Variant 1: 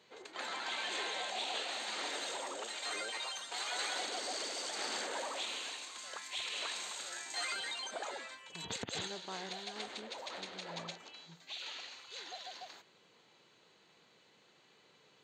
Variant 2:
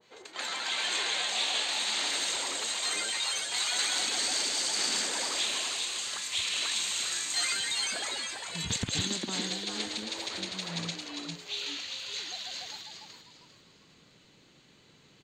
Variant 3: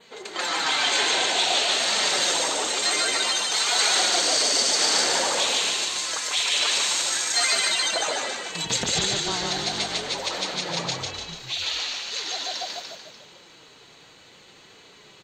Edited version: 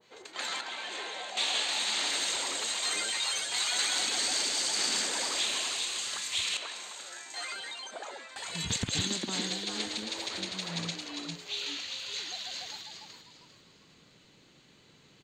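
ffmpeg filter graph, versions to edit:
-filter_complex "[0:a]asplit=2[s0][s1];[1:a]asplit=3[s2][s3][s4];[s2]atrim=end=0.612[s5];[s0]atrim=start=0.608:end=1.372[s6];[s3]atrim=start=1.368:end=6.572[s7];[s1]atrim=start=6.568:end=8.362[s8];[s4]atrim=start=8.358[s9];[s5][s6]acrossfade=d=0.004:c1=hsin:c2=hsin[s10];[s10][s7]acrossfade=d=0.004:c1=hsin:c2=hsin[s11];[s11][s8]acrossfade=d=0.004:c1=hsin:c2=hsin[s12];[s12][s9]acrossfade=d=0.004:c1=hsin:c2=hsin"

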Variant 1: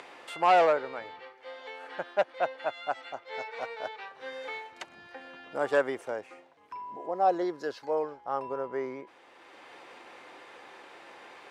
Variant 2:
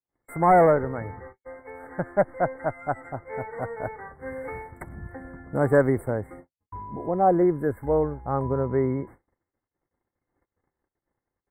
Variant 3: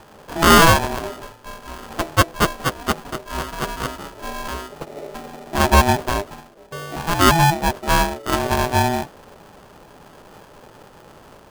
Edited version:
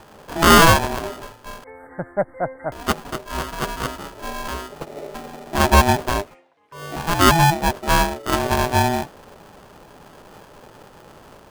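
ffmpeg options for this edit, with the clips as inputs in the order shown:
-filter_complex "[2:a]asplit=3[s0][s1][s2];[s0]atrim=end=1.642[s3];[1:a]atrim=start=1.638:end=2.722[s4];[s1]atrim=start=2.718:end=6.36[s5];[0:a]atrim=start=6.2:end=6.86[s6];[s2]atrim=start=6.7[s7];[s3][s4]acrossfade=d=0.004:c1=hsin:c2=hsin[s8];[s8][s5]acrossfade=d=0.004:c1=hsin:c2=hsin[s9];[s9][s6]acrossfade=d=0.16:c1=tri:c2=tri[s10];[s10][s7]acrossfade=d=0.16:c1=tri:c2=tri"

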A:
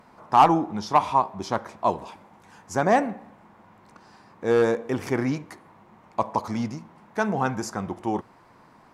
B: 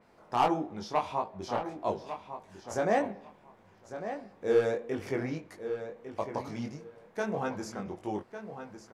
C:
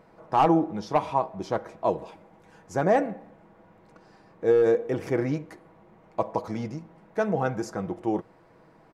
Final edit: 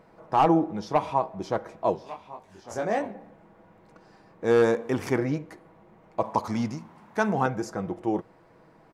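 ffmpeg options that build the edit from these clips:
-filter_complex "[0:a]asplit=2[s0][s1];[2:a]asplit=4[s2][s3][s4][s5];[s2]atrim=end=1.952[s6];[1:a]atrim=start=1.948:end=3.142[s7];[s3]atrim=start=3.138:end=4.442[s8];[s0]atrim=start=4.438:end=5.182[s9];[s4]atrim=start=5.178:end=6.242[s10];[s1]atrim=start=6.238:end=7.462[s11];[s5]atrim=start=7.458[s12];[s6][s7]acrossfade=d=0.004:c1=hsin:c2=hsin[s13];[s13][s8]acrossfade=d=0.004:c1=hsin:c2=hsin[s14];[s14][s9]acrossfade=d=0.004:c1=hsin:c2=hsin[s15];[s15][s10]acrossfade=d=0.004:c1=hsin:c2=hsin[s16];[s16][s11]acrossfade=d=0.004:c1=hsin:c2=hsin[s17];[s17][s12]acrossfade=d=0.004:c1=hsin:c2=hsin"

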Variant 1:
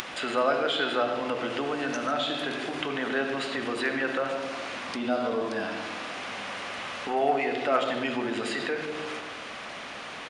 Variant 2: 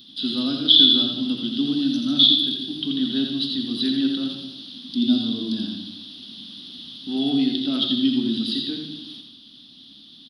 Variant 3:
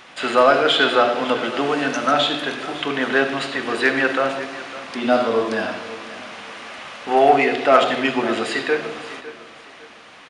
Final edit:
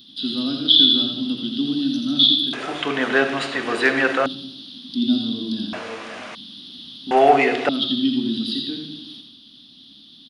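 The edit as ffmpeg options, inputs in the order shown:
-filter_complex "[2:a]asplit=3[s0][s1][s2];[1:a]asplit=4[s3][s4][s5][s6];[s3]atrim=end=2.532[s7];[s0]atrim=start=2.528:end=4.262[s8];[s4]atrim=start=4.258:end=5.732[s9];[s1]atrim=start=5.728:end=6.352[s10];[s5]atrim=start=6.348:end=7.112[s11];[s2]atrim=start=7.108:end=7.692[s12];[s6]atrim=start=7.688[s13];[s7][s8]acrossfade=d=0.004:c1=hsin:c2=hsin[s14];[s14][s9]acrossfade=d=0.004:c1=hsin:c2=hsin[s15];[s15][s10]acrossfade=d=0.004:c1=hsin:c2=hsin[s16];[s16][s11]acrossfade=d=0.004:c1=hsin:c2=hsin[s17];[s17][s12]acrossfade=d=0.004:c1=hsin:c2=hsin[s18];[s18][s13]acrossfade=d=0.004:c1=hsin:c2=hsin"

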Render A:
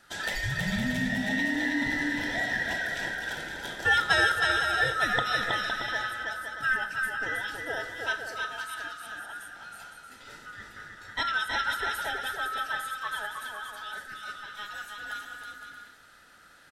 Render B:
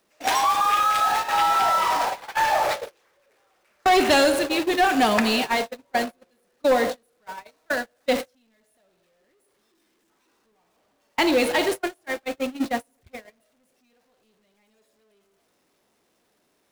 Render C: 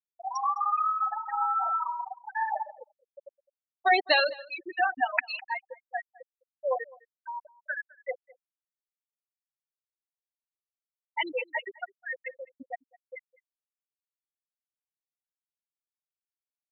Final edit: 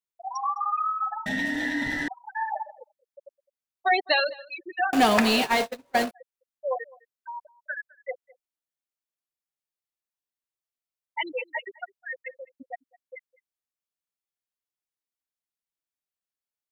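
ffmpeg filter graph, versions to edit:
-filter_complex "[2:a]asplit=3[s0][s1][s2];[s0]atrim=end=1.262[s3];[0:a]atrim=start=1.258:end=2.082[s4];[s1]atrim=start=2.078:end=4.932[s5];[1:a]atrim=start=4.928:end=6.112[s6];[s2]atrim=start=6.108[s7];[s3][s4]acrossfade=d=0.004:c1=hsin:c2=hsin[s8];[s8][s5]acrossfade=d=0.004:c1=hsin:c2=hsin[s9];[s9][s6]acrossfade=d=0.004:c1=hsin:c2=hsin[s10];[s10][s7]acrossfade=d=0.004:c1=hsin:c2=hsin"

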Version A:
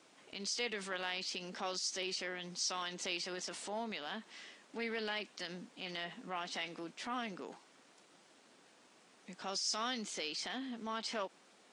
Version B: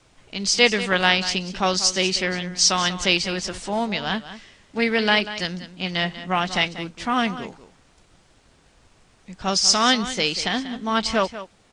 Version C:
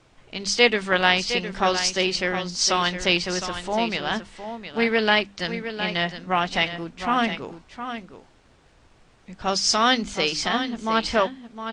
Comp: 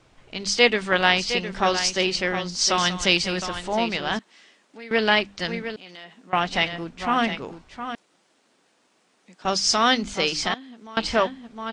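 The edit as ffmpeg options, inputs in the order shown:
-filter_complex "[0:a]asplit=4[s0][s1][s2][s3];[2:a]asplit=6[s4][s5][s6][s7][s8][s9];[s4]atrim=end=2.782[s10];[1:a]atrim=start=2.778:end=3.422[s11];[s5]atrim=start=3.418:end=4.192[s12];[s0]atrim=start=4.188:end=4.912[s13];[s6]atrim=start=4.908:end=5.762[s14];[s1]atrim=start=5.758:end=6.332[s15];[s7]atrim=start=6.328:end=7.952[s16];[s2]atrim=start=7.948:end=9.452[s17];[s8]atrim=start=9.448:end=10.542[s18];[s3]atrim=start=10.538:end=10.972[s19];[s9]atrim=start=10.968[s20];[s10][s11]acrossfade=d=0.004:c1=hsin:c2=hsin[s21];[s21][s12]acrossfade=d=0.004:c1=hsin:c2=hsin[s22];[s22][s13]acrossfade=d=0.004:c1=hsin:c2=hsin[s23];[s23][s14]acrossfade=d=0.004:c1=hsin:c2=hsin[s24];[s24][s15]acrossfade=d=0.004:c1=hsin:c2=hsin[s25];[s25][s16]acrossfade=d=0.004:c1=hsin:c2=hsin[s26];[s26][s17]acrossfade=d=0.004:c1=hsin:c2=hsin[s27];[s27][s18]acrossfade=d=0.004:c1=hsin:c2=hsin[s28];[s28][s19]acrossfade=d=0.004:c1=hsin:c2=hsin[s29];[s29][s20]acrossfade=d=0.004:c1=hsin:c2=hsin"

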